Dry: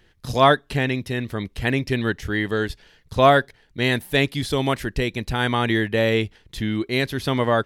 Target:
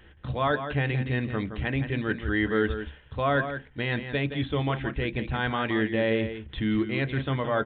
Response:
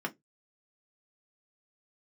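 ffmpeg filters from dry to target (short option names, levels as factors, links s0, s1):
-filter_complex "[0:a]equalizer=f=71:w=3:g=13.5,areverse,acompressor=threshold=0.0562:ratio=6,areverse,alimiter=limit=0.0891:level=0:latency=1:release=321,asplit=2[s0][s1];[s1]adelay=169.1,volume=0.355,highshelf=f=4000:g=-3.8[s2];[s0][s2]amix=inputs=2:normalize=0,asplit=2[s3][s4];[1:a]atrim=start_sample=2205,asetrate=37926,aresample=44100[s5];[s4][s5]afir=irnorm=-1:irlink=0,volume=0.398[s6];[s3][s6]amix=inputs=2:normalize=0,aresample=8000,aresample=44100,volume=1.12"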